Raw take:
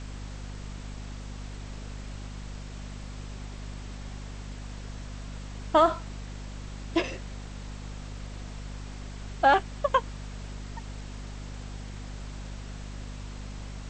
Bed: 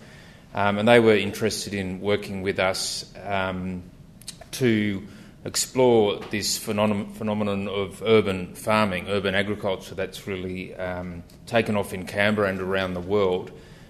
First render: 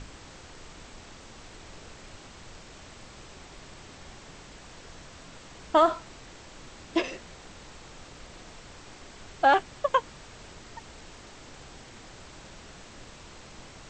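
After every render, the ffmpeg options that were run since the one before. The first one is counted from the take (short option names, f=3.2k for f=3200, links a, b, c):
-af "bandreject=f=50:t=h:w=6,bandreject=f=100:t=h:w=6,bandreject=f=150:t=h:w=6,bandreject=f=200:t=h:w=6,bandreject=f=250:t=h:w=6"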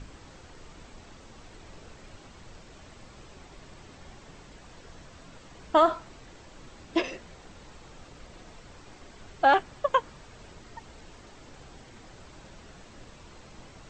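-af "afftdn=nr=6:nf=-49"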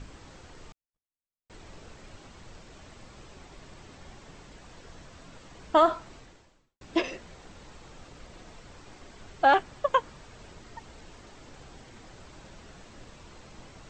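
-filter_complex "[0:a]asettb=1/sr,asplit=3[a][b][c];[a]atrim=end=0.724[d];[b]atrim=start=0.72:end=1.5,asetpts=PTS-STARTPTS,afade=t=in:d=0.004:c=qsin,afade=t=out:st=0.776:d=0.004:c=qsin,agate=range=-59dB:threshold=-40dB:ratio=16:release=100:detection=peak[e];[c]atrim=start=1.496[f];[d][e]acrossfade=d=0.004:c1=hsin:c2=qsin[g];[g][f]acrossfade=d=0.004:c1=qsin:c2=hsin,asplit=2[h][i];[h]atrim=end=6.81,asetpts=PTS-STARTPTS,afade=t=out:st=6.17:d=0.64:c=qua[j];[i]atrim=start=6.81,asetpts=PTS-STARTPTS,afade=t=in:d=0.004:c=hsin[k];[j][k]concat=n=2:v=0:a=1"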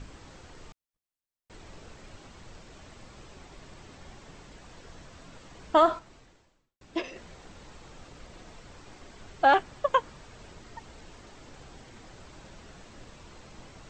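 -filter_complex "[0:a]asplit=3[a][b][c];[a]atrim=end=5.992[d];[b]atrim=start=5.988:end=7.162,asetpts=PTS-STARTPTS,volume=-5.5dB[e];[c]atrim=start=7.158[f];[d][e]acrossfade=d=0.004:c1=hsin:c2=hsin[g];[g][f]acrossfade=d=0.004:c1=hsin:c2=hsin"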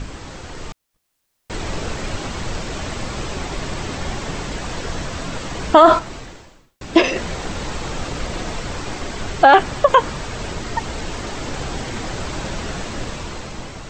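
-af "dynaudnorm=f=410:g=5:m=8dB,alimiter=level_in=14.5dB:limit=-1dB:release=50:level=0:latency=1"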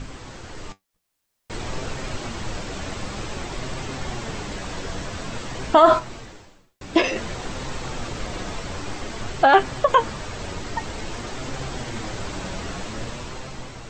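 -af "flanger=delay=7.6:depth=3:regen=60:speed=0.52:shape=sinusoidal"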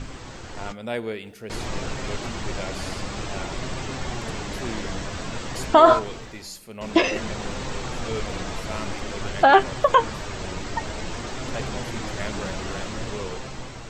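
-filter_complex "[1:a]volume=-13.5dB[a];[0:a][a]amix=inputs=2:normalize=0"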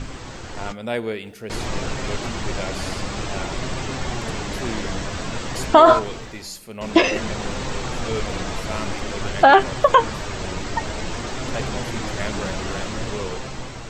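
-af "volume=3.5dB,alimiter=limit=-2dB:level=0:latency=1"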